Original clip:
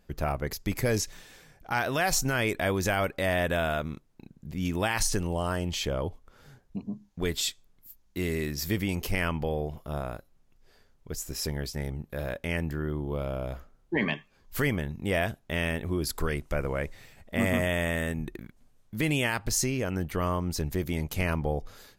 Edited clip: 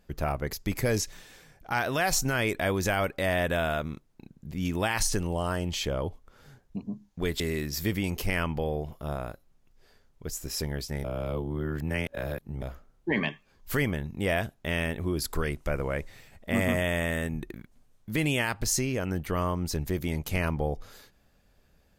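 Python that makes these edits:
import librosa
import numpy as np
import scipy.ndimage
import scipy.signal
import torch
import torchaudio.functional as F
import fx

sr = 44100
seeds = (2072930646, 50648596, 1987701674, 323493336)

y = fx.edit(x, sr, fx.cut(start_s=7.4, length_s=0.85),
    fx.reverse_span(start_s=11.89, length_s=1.58), tone=tone)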